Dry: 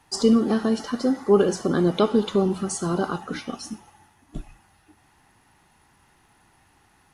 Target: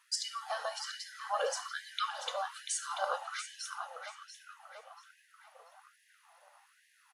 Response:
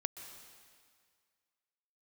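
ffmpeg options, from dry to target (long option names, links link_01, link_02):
-filter_complex "[0:a]asplit=2[link_01][link_02];[link_02]adelay=688,lowpass=frequency=3400:poles=1,volume=-4.5dB,asplit=2[link_03][link_04];[link_04]adelay=688,lowpass=frequency=3400:poles=1,volume=0.49,asplit=2[link_05][link_06];[link_06]adelay=688,lowpass=frequency=3400:poles=1,volume=0.49,asplit=2[link_07][link_08];[link_08]adelay=688,lowpass=frequency=3400:poles=1,volume=0.49,asplit=2[link_09][link_10];[link_10]adelay=688,lowpass=frequency=3400:poles=1,volume=0.49,asplit=2[link_11][link_12];[link_12]adelay=688,lowpass=frequency=3400:poles=1,volume=0.49[link_13];[link_01][link_03][link_05][link_07][link_09][link_11][link_13]amix=inputs=7:normalize=0,afftfilt=real='re*gte(b*sr/1024,470*pow(1600/470,0.5+0.5*sin(2*PI*1.2*pts/sr)))':imag='im*gte(b*sr/1024,470*pow(1600/470,0.5+0.5*sin(2*PI*1.2*pts/sr)))':win_size=1024:overlap=0.75,volume=-4.5dB"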